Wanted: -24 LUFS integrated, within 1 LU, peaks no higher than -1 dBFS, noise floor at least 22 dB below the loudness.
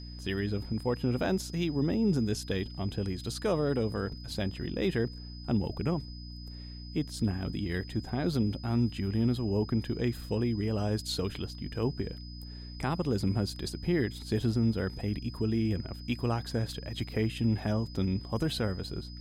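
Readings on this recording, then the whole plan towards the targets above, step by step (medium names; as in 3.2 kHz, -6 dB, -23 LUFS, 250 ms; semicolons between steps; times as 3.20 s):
hum 60 Hz; highest harmonic 300 Hz; hum level -41 dBFS; steady tone 5 kHz; tone level -49 dBFS; loudness -32.0 LUFS; peak level -17.5 dBFS; loudness target -24.0 LUFS
-> hum notches 60/120/180/240/300 Hz; band-stop 5 kHz, Q 30; trim +8 dB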